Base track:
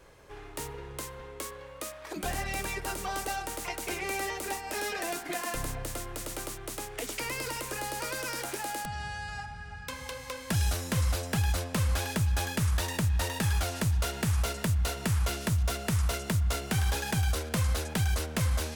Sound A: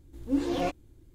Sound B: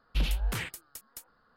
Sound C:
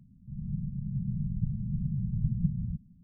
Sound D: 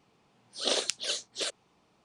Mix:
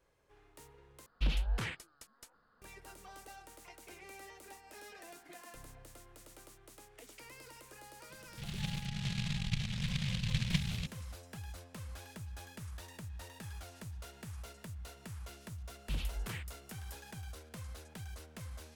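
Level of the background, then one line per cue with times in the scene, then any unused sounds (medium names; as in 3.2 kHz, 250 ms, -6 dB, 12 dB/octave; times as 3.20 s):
base track -18.5 dB
1.06 s: replace with B -3.5 dB + distance through air 52 m
8.10 s: add C -4.5 dB + delay time shaken by noise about 2.9 kHz, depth 0.44 ms
15.74 s: add B -9.5 dB
not used: A, D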